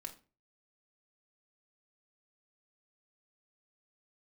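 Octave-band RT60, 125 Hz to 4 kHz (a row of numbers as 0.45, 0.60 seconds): 0.50, 0.40, 0.35, 0.30, 0.30, 0.30 seconds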